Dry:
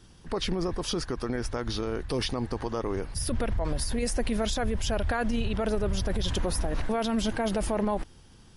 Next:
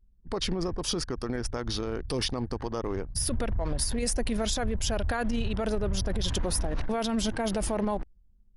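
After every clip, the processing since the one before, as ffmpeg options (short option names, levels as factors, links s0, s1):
-af "anlmdn=1,bass=f=250:g=1,treble=f=4000:g=6,volume=0.841"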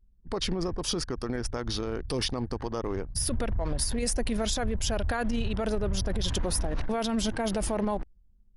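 -af anull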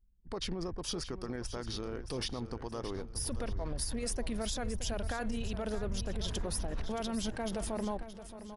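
-af "aecho=1:1:623|1246|1869|2492:0.251|0.105|0.0443|0.0186,volume=0.422"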